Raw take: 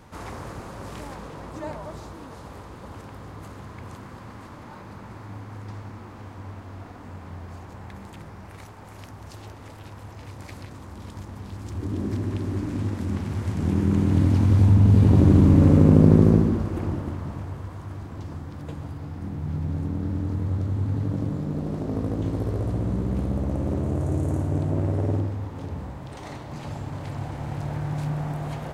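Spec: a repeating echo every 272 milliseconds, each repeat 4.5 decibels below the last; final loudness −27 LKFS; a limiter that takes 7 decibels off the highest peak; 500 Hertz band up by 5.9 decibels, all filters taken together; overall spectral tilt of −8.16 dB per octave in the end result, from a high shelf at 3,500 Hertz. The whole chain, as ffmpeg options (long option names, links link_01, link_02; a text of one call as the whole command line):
ffmpeg -i in.wav -af "equalizer=frequency=500:width_type=o:gain=7.5,highshelf=frequency=3500:gain=8.5,alimiter=limit=-7dB:level=0:latency=1,aecho=1:1:272|544|816|1088|1360|1632|1904|2176|2448:0.596|0.357|0.214|0.129|0.0772|0.0463|0.0278|0.0167|0.01,volume=-5.5dB" out.wav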